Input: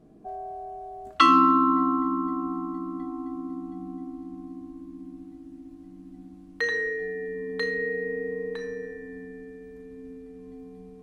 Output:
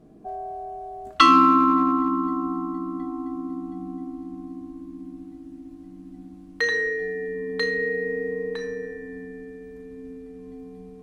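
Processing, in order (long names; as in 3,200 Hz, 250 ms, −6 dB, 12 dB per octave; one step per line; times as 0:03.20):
dynamic equaliser 5,000 Hz, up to +4 dB, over −49 dBFS, Q 1.1
in parallel at −11.5 dB: asymmetric clip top −21.5 dBFS
on the sum: level +1 dB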